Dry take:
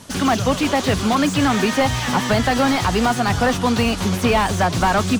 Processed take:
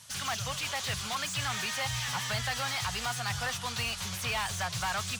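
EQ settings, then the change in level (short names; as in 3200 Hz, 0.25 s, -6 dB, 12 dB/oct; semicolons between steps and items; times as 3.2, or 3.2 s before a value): HPF 71 Hz; passive tone stack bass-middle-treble 10-0-10; bell 130 Hz +9 dB 0.45 oct; -5.5 dB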